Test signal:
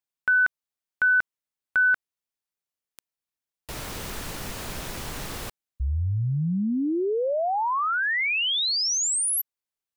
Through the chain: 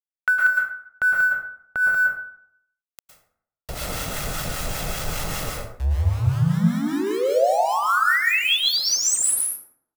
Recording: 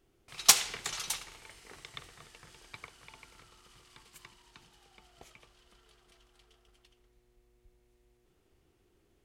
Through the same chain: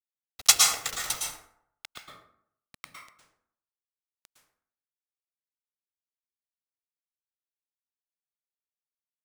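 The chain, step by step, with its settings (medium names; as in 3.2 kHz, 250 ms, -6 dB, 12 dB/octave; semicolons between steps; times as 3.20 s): comb 1.5 ms, depth 54%; in parallel at +1 dB: compression 12:1, threshold -30 dBFS; on the sum: small samples zeroed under -28 dBFS; harmonic tremolo 5.1 Hz, depth 70%, crossover 930 Hz; plate-style reverb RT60 0.67 s, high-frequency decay 0.55×, pre-delay 100 ms, DRR -1.5 dB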